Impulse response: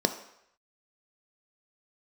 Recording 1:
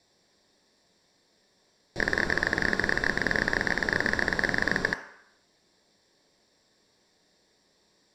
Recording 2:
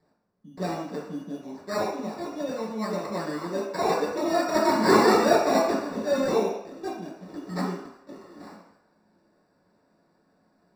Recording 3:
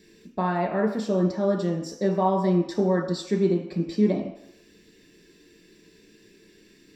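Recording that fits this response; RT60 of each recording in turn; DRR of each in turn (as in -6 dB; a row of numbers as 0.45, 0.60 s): 1; 0.75, 0.75, 0.75 s; 7.5, -5.5, 0.5 dB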